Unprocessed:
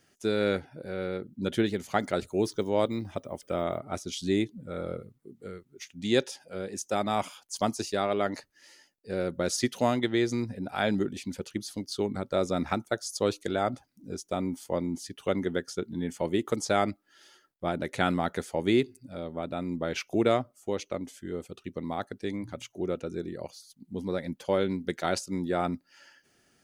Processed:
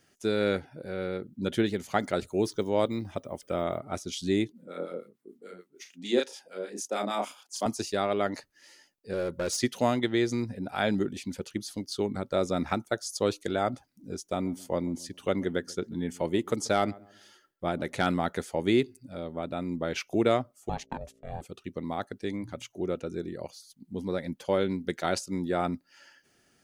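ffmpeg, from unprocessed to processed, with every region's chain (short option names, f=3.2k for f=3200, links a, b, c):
-filter_complex "[0:a]asettb=1/sr,asplit=3[a][b][c];[a]atrim=end=4.524[d];[b]atrim=start=4.52:end=7.66,asetpts=PTS-STARTPTS,afade=t=in:d=0.004:c=qsin,afade=t=out:st=3.136:d=0.004:c=qsin,highpass=f=220:w=0.5412,highpass=f=220:w=1.3066,asplit=2[e][f];[f]adelay=34,volume=-3dB[g];[e][g]amix=inputs=2:normalize=0,atrim=end_sample=138474,acrossover=split=940[h][i];[h]aeval=exprs='val(0)*(1-0.7/2+0.7/2*cos(2*PI*6.7*n/s))':c=same[j];[i]aeval=exprs='val(0)*(1-0.7/2-0.7/2*cos(2*PI*6.7*n/s))':c=same[k];[j][k]amix=inputs=2:normalize=0[l];[c]atrim=start=7.656[m];[d][l]acrossfade=d=0.004:c1=hsin:c2=qsin[n];[n][m]acrossfade=d=0.004:c1=qsin:c2=hsin,asettb=1/sr,asplit=3[o][p][q];[o]atrim=end=9.134[r];[p]atrim=start=9.13:end=9.59,asetpts=PTS-STARTPTS,afade=t=in:d=0.004:c=qsin,afade=t=out:st=0.456:d=0.004:c=qsin,aecho=1:1:2.1:0.35,atrim=end_sample=20286,asoftclip=type=hard:threshold=-25.5dB[s];[q]atrim=start=9.586[t];[r][s]acrossfade=d=0.004:c1=hsin:c2=qsin[u];[u][t]acrossfade=d=0.004:c1=qsin:c2=hsin,asettb=1/sr,asplit=3[v][w][x];[v]atrim=end=14.184[y];[w]atrim=start=14.18:end=18.07,asetpts=PTS-STARTPTS,afade=t=in:d=0.004:c=qsin,afade=t=out:st=3.886:d=0.004:c=qsin,asplit=2[z][aa];[aa]adelay=136,lowpass=f=1.1k:p=1,volume=-21.5dB,asplit=2[ab][ac];[ac]adelay=136,lowpass=f=1.1k:p=1,volume=0.36,asplit=2[ad][ae];[ae]adelay=136,lowpass=f=1.1k:p=1,volume=0.36[af];[z][ab][ad][af]amix=inputs=4:normalize=0,atrim=end_sample=171549,volume=13.5dB,asoftclip=hard,volume=-13.5dB[ag];[x]atrim=start=18.066[ah];[y][ag]acrossfade=d=0.004:c1=hsin:c2=qsin[ai];[ai][ah]acrossfade=d=0.004:c1=qsin:c2=hsin,asettb=1/sr,asplit=3[aj][ak][al];[aj]atrim=end=20.694[am];[ak]atrim=start=20.69:end=21.41,asetpts=PTS-STARTPTS,afade=t=in:d=0.004:c=qsin,afade=t=out:st=0.716:d=0.004:c=qsin,agate=range=-25dB:threshold=-48dB:ratio=16:release=100:detection=peak,aeval=exprs='val(0)+0.001*(sin(2*PI*60*n/s)+sin(2*PI*2*60*n/s)/2+sin(2*PI*3*60*n/s)/3+sin(2*PI*4*60*n/s)/4+sin(2*PI*5*60*n/s)/5)':c=same,aeval=exprs='val(0)*sin(2*PI*330*n/s)':c=same[an];[al]atrim=start=21.406[ao];[am][an]acrossfade=d=0.004:c1=hsin:c2=qsin[ap];[ap][ao]acrossfade=d=0.004:c1=qsin:c2=hsin"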